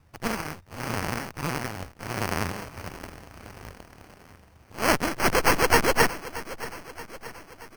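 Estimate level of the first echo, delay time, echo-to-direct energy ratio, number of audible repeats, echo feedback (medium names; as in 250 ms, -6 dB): -16.0 dB, 627 ms, -14.5 dB, 4, 57%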